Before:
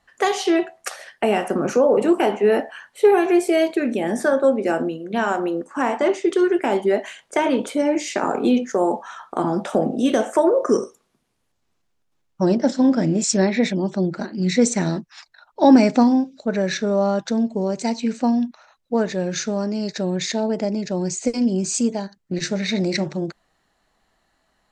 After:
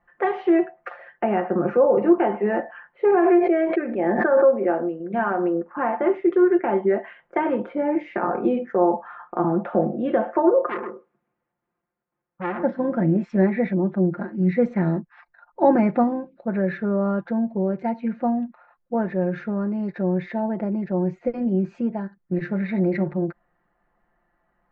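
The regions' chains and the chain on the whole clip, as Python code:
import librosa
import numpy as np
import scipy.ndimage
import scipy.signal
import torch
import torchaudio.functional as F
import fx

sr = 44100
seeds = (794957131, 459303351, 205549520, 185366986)

y = fx.chain(x, sr, fx.lowpass(hz=8500.0, slope=12),
    fx.bass_treble(bass_db=-9, treble_db=-13),
    fx.pre_swell(db_per_s=21.0), at=(3.15, 5.0))
y = fx.chain(y, sr, fx.highpass(hz=190.0, slope=6),
    fx.echo_single(ms=130, db=-9.5),
    fx.transformer_sat(knee_hz=3100.0), at=(10.67, 12.63))
y = scipy.signal.sosfilt(scipy.signal.butter(4, 1900.0, 'lowpass', fs=sr, output='sos'), y)
y = y + 0.65 * np.pad(y, (int(5.7 * sr / 1000.0), 0))[:len(y)]
y = y * librosa.db_to_amplitude(-3.0)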